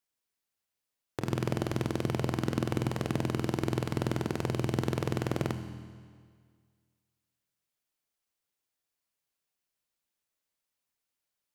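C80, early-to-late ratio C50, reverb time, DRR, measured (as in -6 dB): 8.5 dB, 7.5 dB, 1.9 s, 6.0 dB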